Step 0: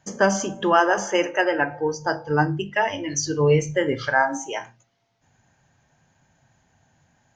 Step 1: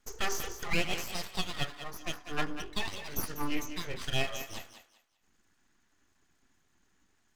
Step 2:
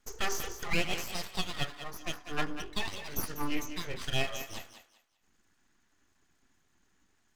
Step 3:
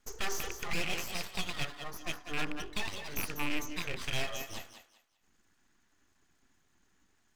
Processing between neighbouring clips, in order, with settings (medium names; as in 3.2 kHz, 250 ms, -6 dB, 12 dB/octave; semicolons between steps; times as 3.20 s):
elliptic band-stop 270–950 Hz; full-wave rectifier; thinning echo 195 ms, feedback 26%, high-pass 400 Hz, level -10 dB; trim -5.5 dB
no audible change
rattle on loud lows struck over -42 dBFS, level -22 dBFS; saturation -23.5 dBFS, distortion -14 dB